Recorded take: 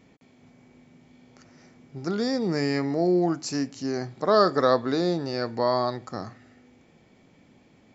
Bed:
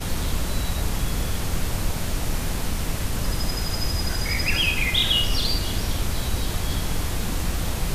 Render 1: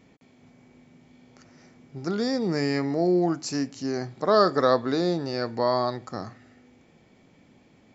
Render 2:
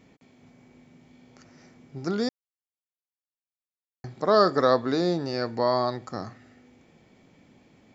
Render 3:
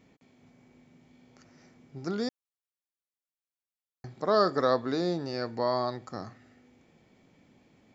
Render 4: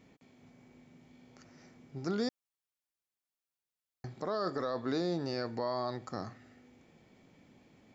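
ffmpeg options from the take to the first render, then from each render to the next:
ffmpeg -i in.wav -af anull out.wav
ffmpeg -i in.wav -filter_complex "[0:a]asplit=3[link_01][link_02][link_03];[link_01]atrim=end=2.29,asetpts=PTS-STARTPTS,afade=type=out:start_time=2.286:duration=0.004:curve=hsin[link_04];[link_02]atrim=start=2.29:end=4.04,asetpts=PTS-STARTPTS,volume=0[link_05];[link_03]atrim=start=4.04,asetpts=PTS-STARTPTS,afade=type=in:duration=0.004:curve=hsin[link_06];[link_04][link_05][link_06]concat=n=3:v=0:a=1" out.wav
ffmpeg -i in.wav -af "volume=-4.5dB" out.wav
ffmpeg -i in.wav -af "acompressor=threshold=-31dB:ratio=1.5,alimiter=limit=-23.5dB:level=0:latency=1:release=12" out.wav

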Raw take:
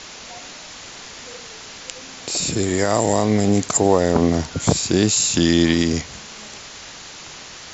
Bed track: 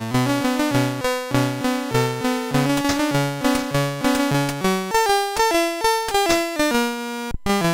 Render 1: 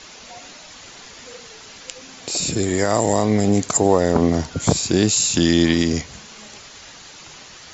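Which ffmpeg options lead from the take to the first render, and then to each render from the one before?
ffmpeg -i in.wav -af "afftdn=noise_reduction=6:noise_floor=-38" out.wav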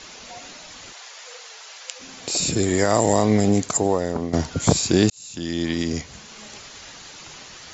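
ffmpeg -i in.wav -filter_complex "[0:a]asplit=3[link_01][link_02][link_03];[link_01]afade=type=out:start_time=0.92:duration=0.02[link_04];[link_02]highpass=frequency=560:width=0.5412,highpass=frequency=560:width=1.3066,afade=type=in:start_time=0.92:duration=0.02,afade=type=out:start_time=1.99:duration=0.02[link_05];[link_03]afade=type=in:start_time=1.99:duration=0.02[link_06];[link_04][link_05][link_06]amix=inputs=3:normalize=0,asplit=3[link_07][link_08][link_09];[link_07]atrim=end=4.33,asetpts=PTS-STARTPTS,afade=type=out:start_time=3.35:duration=0.98:silence=0.223872[link_10];[link_08]atrim=start=4.33:end=5.1,asetpts=PTS-STARTPTS,afade=type=in:duration=0.004:curve=hsin:silence=0.223872,afade=type=out:start_time=0.766:duration=0.004:curve=hsin[link_11];[link_09]atrim=start=5.1,asetpts=PTS-STARTPTS,afade=type=in:duration=1.44[link_12];[link_10][link_11][link_12]concat=n=3:v=0:a=1" out.wav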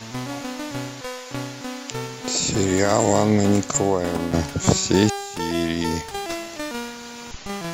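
ffmpeg -i in.wav -i bed.wav -filter_complex "[1:a]volume=-11dB[link_01];[0:a][link_01]amix=inputs=2:normalize=0" out.wav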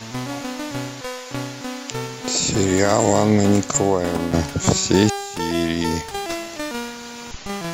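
ffmpeg -i in.wav -af "volume=2dB,alimiter=limit=-3dB:level=0:latency=1" out.wav

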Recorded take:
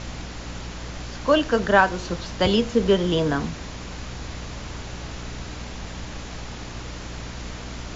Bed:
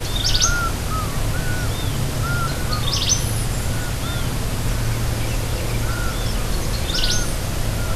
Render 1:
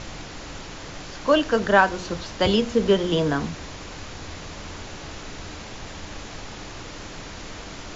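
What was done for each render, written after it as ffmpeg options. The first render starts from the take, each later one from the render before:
ffmpeg -i in.wav -af "bandreject=frequency=60:width_type=h:width=6,bandreject=frequency=120:width_type=h:width=6,bandreject=frequency=180:width_type=h:width=6,bandreject=frequency=240:width_type=h:width=6" out.wav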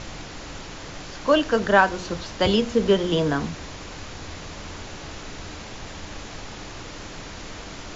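ffmpeg -i in.wav -af anull out.wav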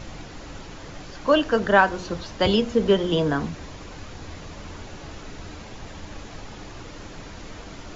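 ffmpeg -i in.wav -af "afftdn=noise_reduction=6:noise_floor=-38" out.wav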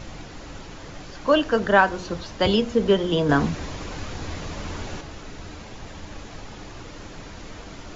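ffmpeg -i in.wav -filter_complex "[0:a]asettb=1/sr,asplit=3[link_01][link_02][link_03];[link_01]atrim=end=3.294[link_04];[link_02]atrim=start=3.29:end=5.01,asetpts=PTS-STARTPTS,afade=type=in:duration=0.004:curve=qsin,afade=type=out:start_time=1.716:duration=0.004:curve=qsin,acontrast=45[link_05];[link_03]atrim=start=5.006[link_06];[link_04][link_05]acrossfade=duration=0.004:curve1=hsin:curve2=qsin[link_07];[link_07][link_06]acrossfade=duration=0.004:curve1=qsin:curve2=hsin" out.wav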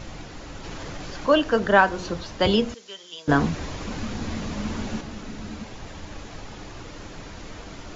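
ffmpeg -i in.wav -filter_complex "[0:a]asplit=3[link_01][link_02][link_03];[link_01]afade=type=out:start_time=0.63:duration=0.02[link_04];[link_02]acompressor=mode=upward:threshold=-27dB:ratio=2.5:attack=3.2:release=140:knee=2.83:detection=peak,afade=type=in:start_time=0.63:duration=0.02,afade=type=out:start_time=2.17:duration=0.02[link_05];[link_03]afade=type=in:start_time=2.17:duration=0.02[link_06];[link_04][link_05][link_06]amix=inputs=3:normalize=0,asettb=1/sr,asplit=3[link_07][link_08][link_09];[link_07]atrim=end=2.744[link_10];[link_08]atrim=start=2.74:end=3.28,asetpts=PTS-STARTPTS,afade=type=in:duration=0.004:curve=qsin,afade=type=out:start_time=0.536:duration=0.004:curve=qsin,bandpass=frequency=6600:width_type=q:width=1.3[link_11];[link_09]atrim=start=3.276[link_12];[link_10][link_11]acrossfade=duration=0.004:curve1=hsin:curve2=qsin[link_13];[link_13][link_12]acrossfade=duration=0.004:curve1=qsin:curve2=hsin,asettb=1/sr,asplit=3[link_14][link_15][link_16];[link_14]atrim=end=3.874[link_17];[link_15]atrim=start=3.87:end=5.64,asetpts=PTS-STARTPTS,afade=type=in:duration=0.004:curve=qsin,afade=type=out:start_time=1.766:duration=0.004:curve=qsin,equalizer=frequency=220:width_type=o:width=0.36:gain=14.5[link_18];[link_16]atrim=start=5.636[link_19];[link_17][link_18]acrossfade=duration=0.004:curve1=hsin:curve2=qsin[link_20];[link_20][link_19]acrossfade=duration=0.004:curve1=qsin:curve2=hsin" out.wav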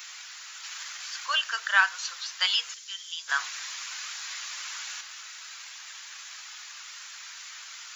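ffmpeg -i in.wav -af "highpass=frequency=1300:width=0.5412,highpass=frequency=1300:width=1.3066,aemphasis=mode=production:type=bsi" out.wav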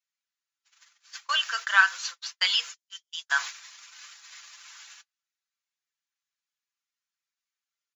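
ffmpeg -i in.wav -af "agate=range=-50dB:threshold=-35dB:ratio=16:detection=peak,aecho=1:1:5.9:0.49" out.wav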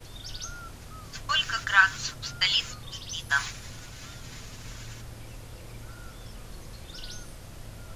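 ffmpeg -i in.wav -i bed.wav -filter_complex "[1:a]volume=-21dB[link_01];[0:a][link_01]amix=inputs=2:normalize=0" out.wav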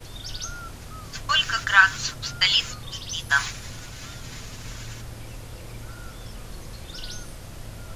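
ffmpeg -i in.wav -af "volume=4.5dB,alimiter=limit=-2dB:level=0:latency=1" out.wav

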